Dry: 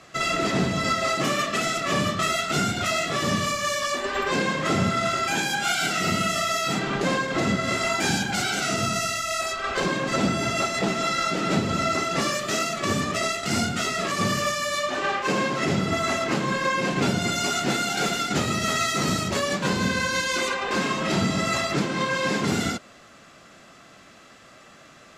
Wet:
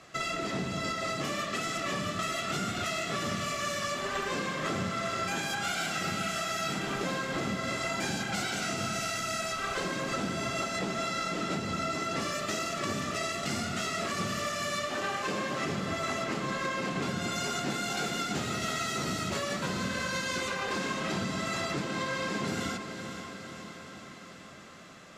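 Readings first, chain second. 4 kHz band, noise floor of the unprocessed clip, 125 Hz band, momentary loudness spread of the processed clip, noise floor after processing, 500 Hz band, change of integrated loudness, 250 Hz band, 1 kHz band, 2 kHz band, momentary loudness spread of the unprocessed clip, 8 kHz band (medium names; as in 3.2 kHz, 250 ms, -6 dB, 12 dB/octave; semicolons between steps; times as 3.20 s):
-7.5 dB, -50 dBFS, -8.5 dB, 2 LU, -47 dBFS, -8.0 dB, -8.0 dB, -8.5 dB, -7.5 dB, -7.5 dB, 2 LU, -7.5 dB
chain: compression, threshold -26 dBFS, peak gain reduction 8.5 dB; on a send: echo that smears into a reverb 497 ms, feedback 64%, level -8.5 dB; on the sum: trim -4 dB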